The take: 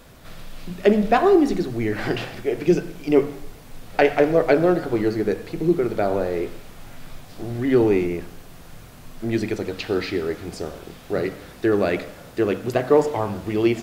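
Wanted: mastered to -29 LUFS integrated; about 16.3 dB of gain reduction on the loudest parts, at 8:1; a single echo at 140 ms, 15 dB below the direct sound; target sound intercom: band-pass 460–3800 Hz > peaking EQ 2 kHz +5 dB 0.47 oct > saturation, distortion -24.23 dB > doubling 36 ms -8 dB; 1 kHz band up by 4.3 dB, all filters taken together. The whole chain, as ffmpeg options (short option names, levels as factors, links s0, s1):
-filter_complex "[0:a]equalizer=f=1000:t=o:g=7,acompressor=threshold=0.0447:ratio=8,highpass=460,lowpass=3800,equalizer=f=2000:t=o:w=0.47:g=5,aecho=1:1:140:0.178,asoftclip=threshold=0.15,asplit=2[s0][s1];[s1]adelay=36,volume=0.398[s2];[s0][s2]amix=inputs=2:normalize=0,volume=2.11"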